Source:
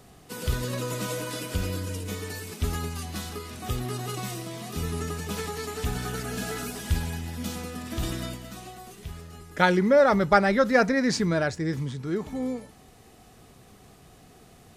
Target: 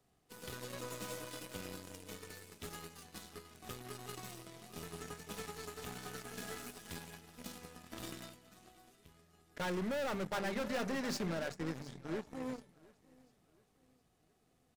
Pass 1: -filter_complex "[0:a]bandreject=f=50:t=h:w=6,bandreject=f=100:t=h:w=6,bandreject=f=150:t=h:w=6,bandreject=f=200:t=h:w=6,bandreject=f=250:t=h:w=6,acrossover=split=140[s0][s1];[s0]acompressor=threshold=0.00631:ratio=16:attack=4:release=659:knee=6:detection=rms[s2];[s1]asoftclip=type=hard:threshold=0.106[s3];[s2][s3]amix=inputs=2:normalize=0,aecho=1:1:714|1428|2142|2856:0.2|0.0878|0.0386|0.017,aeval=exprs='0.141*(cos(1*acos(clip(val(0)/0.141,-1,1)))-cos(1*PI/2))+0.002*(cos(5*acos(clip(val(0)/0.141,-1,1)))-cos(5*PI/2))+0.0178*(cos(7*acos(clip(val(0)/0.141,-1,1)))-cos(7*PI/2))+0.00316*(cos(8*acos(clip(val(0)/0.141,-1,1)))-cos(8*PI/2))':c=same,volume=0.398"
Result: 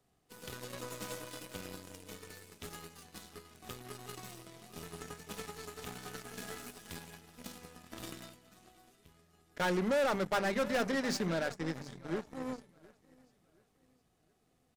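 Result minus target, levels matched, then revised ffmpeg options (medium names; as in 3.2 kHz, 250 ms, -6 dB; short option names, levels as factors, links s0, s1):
hard clipper: distortion -5 dB
-filter_complex "[0:a]bandreject=f=50:t=h:w=6,bandreject=f=100:t=h:w=6,bandreject=f=150:t=h:w=6,bandreject=f=200:t=h:w=6,bandreject=f=250:t=h:w=6,acrossover=split=140[s0][s1];[s0]acompressor=threshold=0.00631:ratio=16:attack=4:release=659:knee=6:detection=rms[s2];[s1]asoftclip=type=hard:threshold=0.0501[s3];[s2][s3]amix=inputs=2:normalize=0,aecho=1:1:714|1428|2142|2856:0.2|0.0878|0.0386|0.017,aeval=exprs='0.141*(cos(1*acos(clip(val(0)/0.141,-1,1)))-cos(1*PI/2))+0.002*(cos(5*acos(clip(val(0)/0.141,-1,1)))-cos(5*PI/2))+0.0178*(cos(7*acos(clip(val(0)/0.141,-1,1)))-cos(7*PI/2))+0.00316*(cos(8*acos(clip(val(0)/0.141,-1,1)))-cos(8*PI/2))':c=same,volume=0.398"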